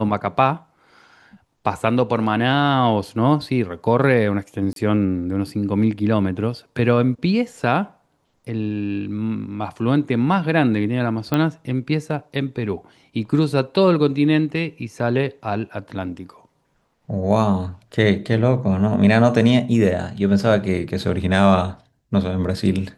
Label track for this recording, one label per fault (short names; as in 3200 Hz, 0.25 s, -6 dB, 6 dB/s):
4.730000	4.760000	gap 32 ms
11.340000	11.340000	pop -8 dBFS